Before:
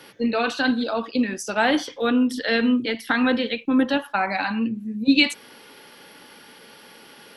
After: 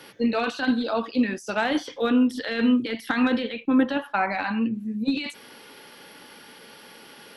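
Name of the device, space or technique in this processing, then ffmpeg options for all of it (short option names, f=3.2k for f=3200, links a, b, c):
de-esser from a sidechain: -filter_complex "[0:a]asplit=2[a][b];[b]highpass=6.4k,apad=whole_len=324622[c];[a][c]sidechaincompress=threshold=-44dB:ratio=12:attack=2.3:release=21,asettb=1/sr,asplit=3[d][e][f];[d]atrim=end=3.424[g];[e]atrim=start=3.42:end=4.73,asetpts=PTS-STARTPTS,afade=t=in:d=0.004:c=qsin,afade=t=out:st=1.306:d=0.004:c=qsin,bass=f=250:g=-1,treble=f=4k:g=-8[h];[f]atrim=start=4.726[i];[g][h]acrossfade=d=0.004:c1=hsin:c2=qsin[j];[j][i]acrossfade=d=0.004:c1=qsin:c2=hsin"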